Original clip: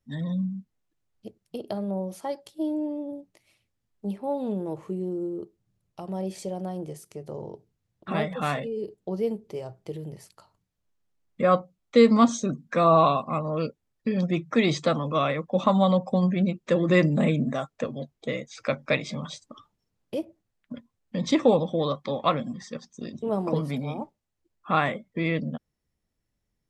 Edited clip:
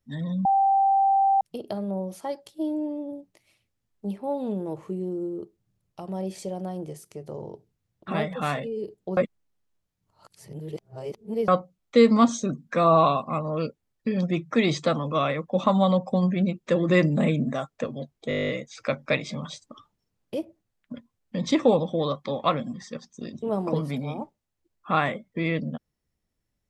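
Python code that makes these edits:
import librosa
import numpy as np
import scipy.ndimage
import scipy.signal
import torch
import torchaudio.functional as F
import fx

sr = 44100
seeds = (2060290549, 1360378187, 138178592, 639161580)

y = fx.edit(x, sr, fx.bleep(start_s=0.45, length_s=0.96, hz=783.0, db=-17.0),
    fx.reverse_span(start_s=9.17, length_s=2.31),
    fx.stutter(start_s=18.29, slice_s=0.02, count=11), tone=tone)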